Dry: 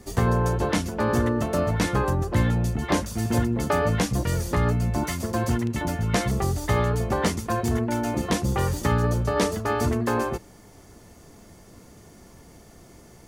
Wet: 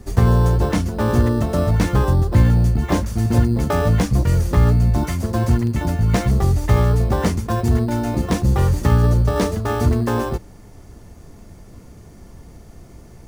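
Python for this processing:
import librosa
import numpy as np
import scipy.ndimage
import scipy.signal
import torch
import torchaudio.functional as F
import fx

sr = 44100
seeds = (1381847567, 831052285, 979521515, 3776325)

p1 = fx.low_shelf(x, sr, hz=120.0, db=12.0)
p2 = fx.sample_hold(p1, sr, seeds[0], rate_hz=4500.0, jitter_pct=0)
p3 = p1 + (p2 * 10.0 ** (-7.0 / 20.0))
y = p3 * 10.0 ** (-1.0 / 20.0)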